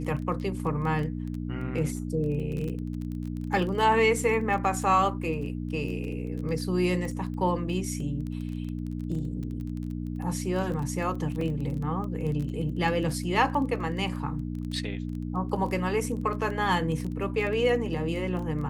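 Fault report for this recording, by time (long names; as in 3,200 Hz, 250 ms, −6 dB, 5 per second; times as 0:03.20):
surface crackle 13 per second −32 dBFS
mains hum 60 Hz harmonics 5 −33 dBFS
0:11.41: drop-out 3.4 ms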